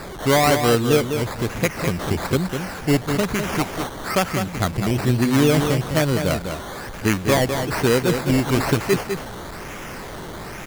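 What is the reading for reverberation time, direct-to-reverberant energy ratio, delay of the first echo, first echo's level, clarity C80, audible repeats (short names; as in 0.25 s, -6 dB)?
none, none, 0.202 s, -7.0 dB, none, 1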